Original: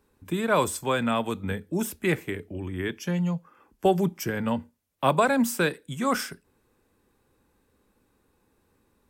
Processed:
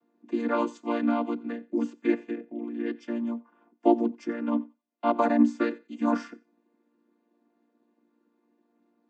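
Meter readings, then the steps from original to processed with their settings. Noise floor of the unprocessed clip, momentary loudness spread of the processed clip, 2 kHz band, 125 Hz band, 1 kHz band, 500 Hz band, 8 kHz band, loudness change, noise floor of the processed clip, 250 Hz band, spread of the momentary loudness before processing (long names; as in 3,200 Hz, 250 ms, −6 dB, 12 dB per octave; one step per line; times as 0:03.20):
−70 dBFS, 10 LU, −9.0 dB, below −15 dB, −3.0 dB, −3.0 dB, below −20 dB, −1.5 dB, −74 dBFS, +2.0 dB, 10 LU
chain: channel vocoder with a chord as carrier major triad, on A#3
high-frequency loss of the air 60 metres
on a send: feedback echo with a high-pass in the loop 90 ms, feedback 20%, high-pass 590 Hz, level −22 dB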